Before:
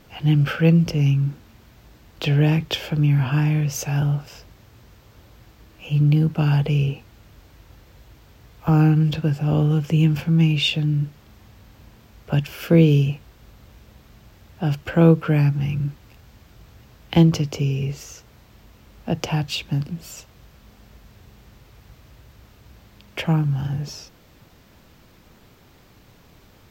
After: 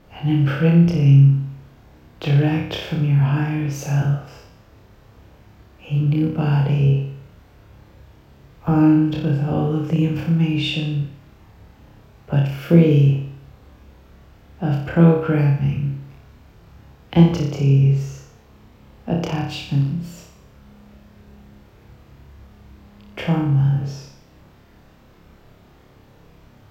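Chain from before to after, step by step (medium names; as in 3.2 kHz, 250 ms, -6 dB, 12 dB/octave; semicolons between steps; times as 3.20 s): treble shelf 2.6 kHz -10.5 dB; on a send: flutter echo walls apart 5 m, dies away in 0.65 s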